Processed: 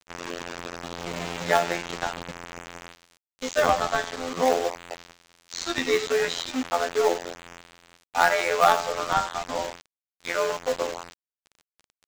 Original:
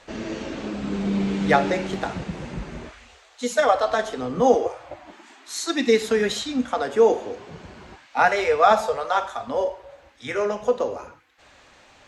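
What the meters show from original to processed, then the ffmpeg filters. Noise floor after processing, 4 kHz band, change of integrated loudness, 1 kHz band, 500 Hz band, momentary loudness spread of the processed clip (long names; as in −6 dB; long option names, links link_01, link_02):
below −85 dBFS, +0.5 dB, −3.0 dB, −2.0 dB, −4.5 dB, 18 LU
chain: -filter_complex "[0:a]asplit=2[link_01][link_02];[link_02]highpass=frequency=720:poles=1,volume=14dB,asoftclip=type=tanh:threshold=-3.5dB[link_03];[link_01][link_03]amix=inputs=2:normalize=0,lowpass=frequency=3400:poles=1,volume=-6dB,afftfilt=real='hypot(re,im)*cos(PI*b)':imag='0':win_size=2048:overlap=0.75,aresample=16000,acrusher=bits=4:mix=0:aa=0.000001,aresample=44100,agate=range=-9dB:threshold=-41dB:ratio=16:detection=peak,asplit=2[link_04][link_05];[link_05]acrusher=samples=35:mix=1:aa=0.000001:lfo=1:lforange=56:lforate=0.56,volume=-11dB[link_06];[link_04][link_06]amix=inputs=2:normalize=0,lowshelf=frequency=210:gain=-6,aeval=exprs='sgn(val(0))*max(abs(val(0))-0.00596,0)':channel_layout=same,volume=-3.5dB"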